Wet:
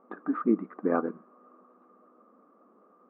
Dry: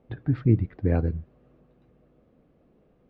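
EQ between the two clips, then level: brick-wall FIR high-pass 190 Hz; synth low-pass 1200 Hz, resonance Q 13; 0.0 dB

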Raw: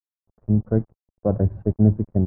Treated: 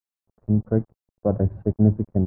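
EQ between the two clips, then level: low shelf 76 Hz -5 dB; 0.0 dB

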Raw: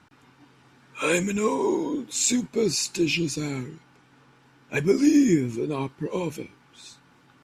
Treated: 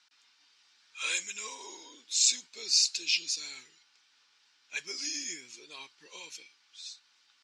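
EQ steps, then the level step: band-pass 4900 Hz, Q 1.8; air absorption 64 m; tilt +2.5 dB/oct; +2.0 dB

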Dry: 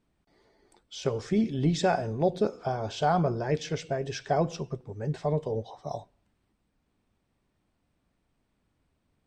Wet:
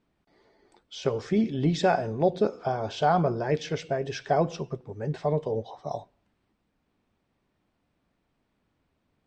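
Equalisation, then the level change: air absorption 78 m; low shelf 120 Hz -7.5 dB; +3.0 dB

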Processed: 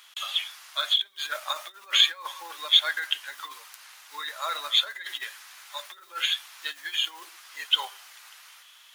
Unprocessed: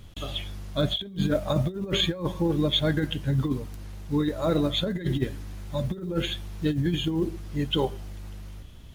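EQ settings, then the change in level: HPF 1100 Hz 24 dB/oct; +7.0 dB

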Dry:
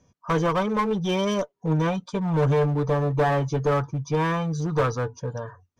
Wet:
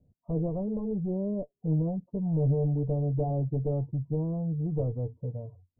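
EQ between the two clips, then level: elliptic low-pass 700 Hz, stop band 70 dB; air absorption 400 m; low shelf 200 Hz +11 dB; -9.0 dB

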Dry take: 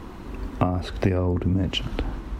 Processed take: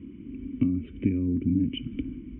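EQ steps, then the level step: vocal tract filter i; HPF 66 Hz; fixed phaser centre 1800 Hz, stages 4; +6.0 dB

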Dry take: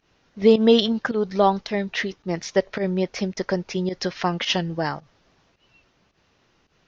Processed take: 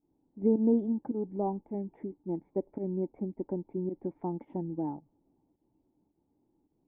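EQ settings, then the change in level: vocal tract filter u; air absorption 280 m; +1.5 dB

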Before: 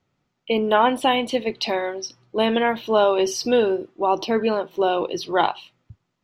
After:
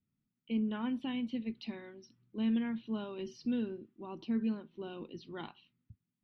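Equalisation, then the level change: air absorption 260 m; passive tone stack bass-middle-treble 6-0-2; bell 230 Hz +13 dB 0.87 oct; 0.0 dB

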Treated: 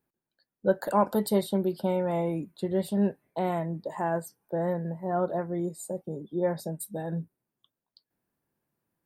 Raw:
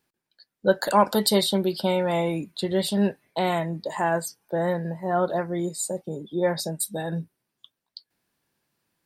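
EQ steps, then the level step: bell 4400 Hz -15 dB 2.6 oct; -2.5 dB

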